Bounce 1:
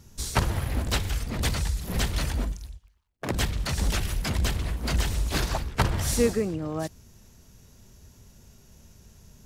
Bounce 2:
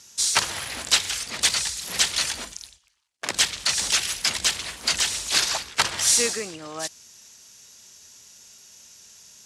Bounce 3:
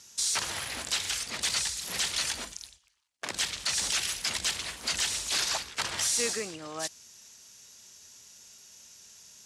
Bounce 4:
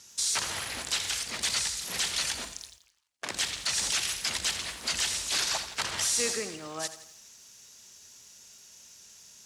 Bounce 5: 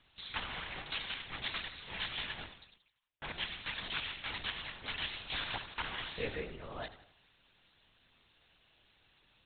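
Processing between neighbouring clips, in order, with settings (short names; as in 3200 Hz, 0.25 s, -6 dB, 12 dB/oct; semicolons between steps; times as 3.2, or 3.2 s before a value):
weighting filter ITU-R 468; gain +1.5 dB
limiter -14.5 dBFS, peak gain reduction 9 dB; gain -3.5 dB
lo-fi delay 84 ms, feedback 55%, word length 9-bit, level -12.5 dB
LPC vocoder at 8 kHz whisper; gain -5 dB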